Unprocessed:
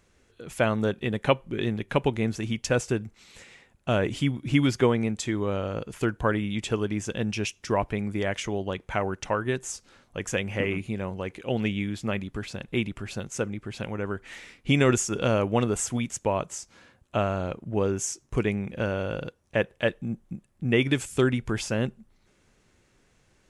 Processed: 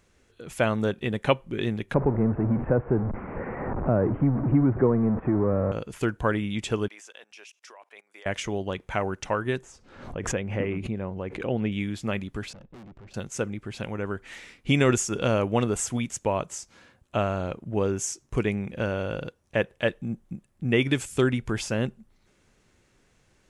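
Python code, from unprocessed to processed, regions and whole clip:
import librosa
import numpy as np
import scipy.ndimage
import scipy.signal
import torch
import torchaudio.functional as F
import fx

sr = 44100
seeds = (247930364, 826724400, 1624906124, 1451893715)

y = fx.chain(x, sr, fx.zero_step(step_db=-23.5),
    fx.gaussian_blur(sigma=7.1),
    fx.band_squash(depth_pct=40), at=(1.94, 5.72))
y = fx.chain(y, sr, fx.bessel_highpass(hz=790.0, order=4),
    fx.level_steps(step_db=24), at=(6.88, 8.26))
y = fx.chain(y, sr, fx.lowpass(hz=1100.0, slope=6),
    fx.pre_swell(db_per_s=75.0), at=(9.61, 11.72))
y = fx.chain(y, sr, fx.lowpass(hz=5300.0, slope=24),
    fx.peak_eq(hz=3300.0, db=-14.0, octaves=2.9),
    fx.tube_stage(drive_db=44.0, bias=0.7), at=(12.53, 13.14))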